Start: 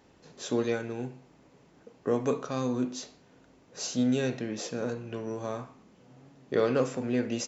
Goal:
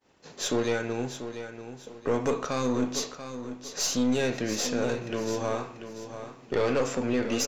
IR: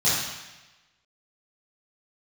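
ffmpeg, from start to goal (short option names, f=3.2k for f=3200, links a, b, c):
-filter_complex "[0:a]agate=range=-33dB:threshold=-52dB:ratio=3:detection=peak,lowshelf=f=390:g=-8,asplit=2[a][b];[b]alimiter=level_in=2.5dB:limit=-24dB:level=0:latency=1:release=166,volume=-2.5dB,volume=2dB[c];[a][c]amix=inputs=2:normalize=0,aeval=exprs='(tanh(14.1*val(0)+0.4)-tanh(0.4))/14.1':c=same,aecho=1:1:688|1376|2064:0.299|0.0925|0.0287,volume=3.5dB"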